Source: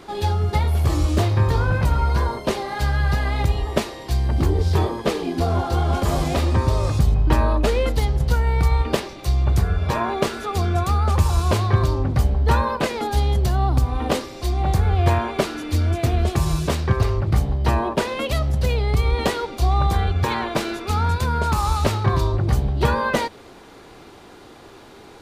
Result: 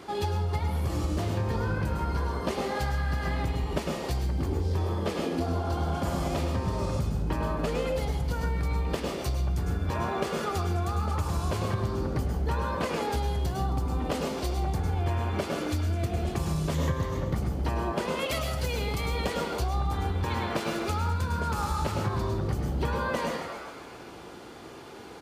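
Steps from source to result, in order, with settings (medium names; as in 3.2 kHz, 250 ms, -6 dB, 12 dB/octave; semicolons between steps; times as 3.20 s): 18.18–19.21 s: tilt EQ +1.5 dB/octave; frequency-shifting echo 134 ms, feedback 60%, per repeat +110 Hz, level -15 dB; on a send at -3.5 dB: reverberation RT60 0.40 s, pre-delay 98 ms; 20.53–21.39 s: on the sum: crackle 40 per s -29 dBFS; high-pass 59 Hz; band-stop 3.8 kHz, Q 19; compression 4:1, threshold -24 dBFS, peak gain reduction 11.5 dB; 16.74–17.35 s: rippled EQ curve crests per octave 1.1, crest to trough 8 dB; trim -2.5 dB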